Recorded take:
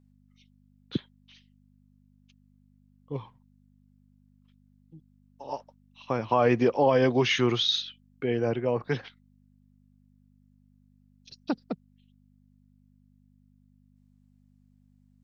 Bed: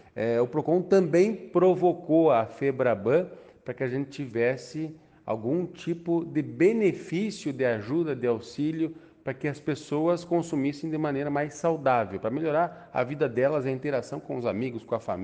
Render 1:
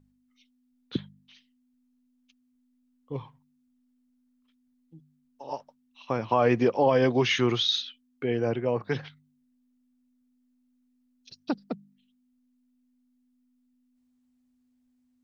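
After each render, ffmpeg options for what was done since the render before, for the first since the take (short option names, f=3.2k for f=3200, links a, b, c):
-af "bandreject=f=50:t=h:w=4,bandreject=f=100:t=h:w=4,bandreject=f=150:t=h:w=4,bandreject=f=200:t=h:w=4"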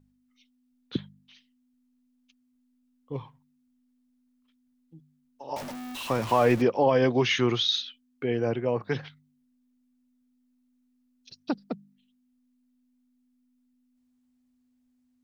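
-filter_complex "[0:a]asettb=1/sr,asplit=3[a][b][c];[a]atrim=end=5.564[d];[b]atrim=start=5.56:end=6.62,asetpts=PTS-STARTPTS,afade=t=in:d=0.004:c=qsin,afade=t=out:st=1.056:d=0.004:c=qsin,aeval=exprs='val(0)+0.5*0.0251*sgn(val(0))':c=same[e];[c]atrim=start=6.616[f];[d][e]acrossfade=d=0.004:c1=hsin:c2=qsin[g];[g][f]acrossfade=d=0.004:c1=qsin:c2=hsin"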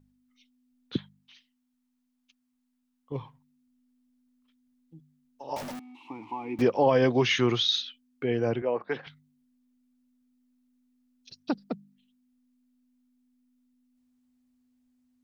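-filter_complex "[0:a]asettb=1/sr,asplit=3[a][b][c];[a]atrim=end=0.984[d];[b]atrim=start=0.98:end=3.12,asetpts=PTS-STARTPTS,afade=t=in:d=0.004:c=qsin,afade=t=out:st=2.136:d=0.004:c=qsin,lowshelf=f=630:t=q:w=1.5:g=-6[e];[c]atrim=start=3.116[f];[d][e]acrossfade=d=0.004:c1=hsin:c2=qsin[g];[g][f]acrossfade=d=0.004:c1=qsin:c2=hsin,asettb=1/sr,asplit=3[h][i][j];[h]atrim=end=5.794[k];[i]atrim=start=5.79:end=6.59,asetpts=PTS-STARTPTS,afade=t=in:d=0.004:c=qsin,afade=t=out:st=0.796:d=0.004:c=qsin,asplit=3[l][m][n];[l]bandpass=f=300:t=q:w=8,volume=0dB[o];[m]bandpass=f=870:t=q:w=8,volume=-6dB[p];[n]bandpass=f=2.24k:t=q:w=8,volume=-9dB[q];[o][p][q]amix=inputs=3:normalize=0[r];[j]atrim=start=6.586[s];[k][r]acrossfade=d=0.004:c1=hsin:c2=qsin[t];[t][s]acrossfade=d=0.004:c1=qsin:c2=hsin,asettb=1/sr,asplit=3[u][v][w];[u]atrim=end=8.624[x];[v]atrim=start=8.62:end=9.07,asetpts=PTS-STARTPTS,afade=t=in:d=0.004:c=qsin,afade=t=out:st=0.446:d=0.004:c=qsin,highpass=320,lowpass=2.8k[y];[w]atrim=start=9.066[z];[x][y]acrossfade=d=0.004:c1=hsin:c2=qsin[aa];[aa][z]acrossfade=d=0.004:c1=qsin:c2=hsin"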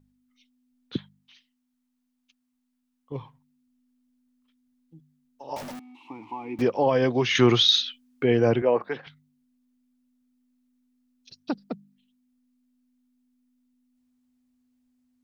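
-filter_complex "[0:a]asettb=1/sr,asplit=3[a][b][c];[a]atrim=end=7.354[d];[b]atrim=start=7.35:end=8.89,asetpts=PTS-STARTPTS,afade=t=in:d=0.004:c=qsin,afade=t=out:st=1.536:d=0.004:c=qsin,acontrast=74[e];[c]atrim=start=8.886[f];[d][e]acrossfade=d=0.004:c1=hsin:c2=qsin[g];[g][f]acrossfade=d=0.004:c1=qsin:c2=hsin"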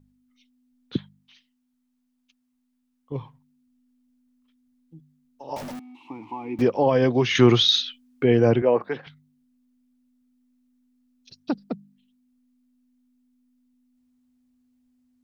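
-af "lowshelf=f=470:g=4.5"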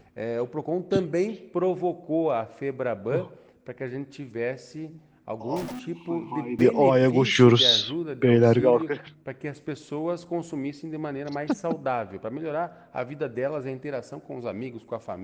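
-filter_complex "[1:a]volume=-4dB[a];[0:a][a]amix=inputs=2:normalize=0"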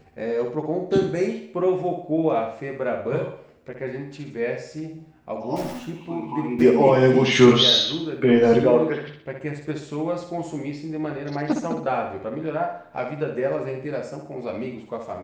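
-filter_complex "[0:a]asplit=2[a][b];[b]adelay=13,volume=-2.5dB[c];[a][c]amix=inputs=2:normalize=0,aecho=1:1:62|124|186|248|310|372:0.501|0.231|0.106|0.0488|0.0224|0.0103"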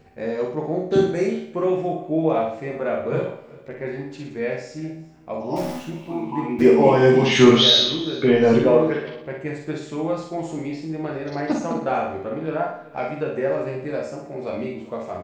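-filter_complex "[0:a]asplit=2[a][b];[b]adelay=44,volume=-4dB[c];[a][c]amix=inputs=2:normalize=0,aecho=1:1:388:0.0841"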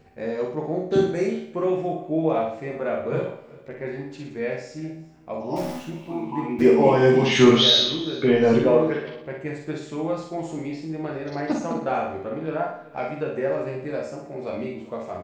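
-af "volume=-2dB"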